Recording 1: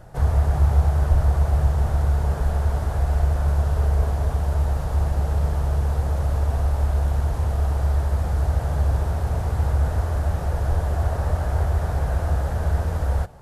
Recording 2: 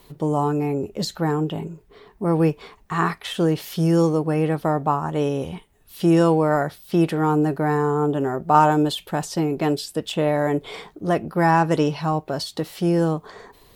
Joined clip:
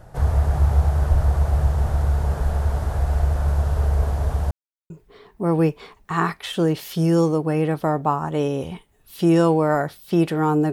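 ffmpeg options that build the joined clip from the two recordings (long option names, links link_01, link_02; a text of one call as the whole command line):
ffmpeg -i cue0.wav -i cue1.wav -filter_complex "[0:a]apad=whole_dur=10.72,atrim=end=10.72,asplit=2[link_01][link_02];[link_01]atrim=end=4.51,asetpts=PTS-STARTPTS,afade=type=out:start_time=4.506:duration=0.004:curve=hsin[link_03];[link_02]atrim=start=4.51:end=4.9,asetpts=PTS-STARTPTS,volume=0[link_04];[1:a]atrim=start=1.71:end=7.53,asetpts=PTS-STARTPTS,afade=type=in:duration=0.004:curve=hsin[link_05];[link_03][link_04][link_05]concat=n=3:v=0:a=1" out.wav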